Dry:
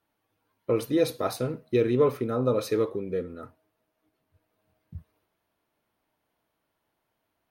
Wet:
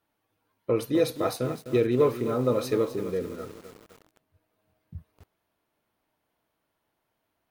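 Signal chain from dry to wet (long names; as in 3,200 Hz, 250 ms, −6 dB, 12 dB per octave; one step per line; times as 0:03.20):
feedback echo at a low word length 255 ms, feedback 55%, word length 7 bits, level −10.5 dB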